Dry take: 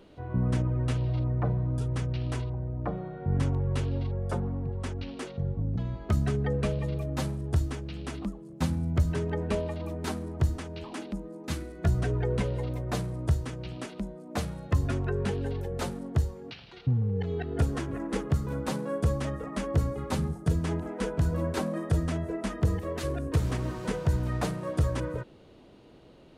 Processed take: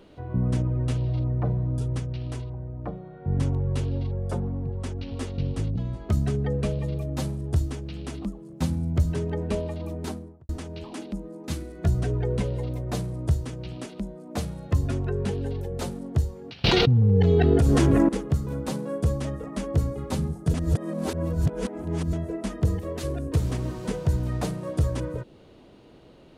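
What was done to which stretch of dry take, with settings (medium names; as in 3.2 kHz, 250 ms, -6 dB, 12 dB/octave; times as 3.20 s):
1.99–3.37 s: upward expansion, over -37 dBFS
4.74–5.33 s: echo throw 370 ms, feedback 10%, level -2 dB
9.96–10.49 s: studio fade out
16.64–18.09 s: level flattener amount 100%
20.54–22.13 s: reverse
whole clip: dynamic bell 1.5 kHz, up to -6 dB, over -50 dBFS, Q 0.72; trim +2.5 dB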